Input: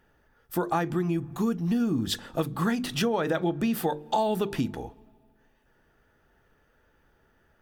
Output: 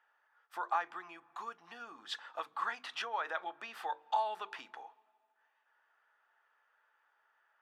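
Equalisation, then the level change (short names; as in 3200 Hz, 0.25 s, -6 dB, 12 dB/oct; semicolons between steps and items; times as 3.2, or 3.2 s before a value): ladder band-pass 1200 Hz, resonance 35%; tilt +3.5 dB/oct; +5.0 dB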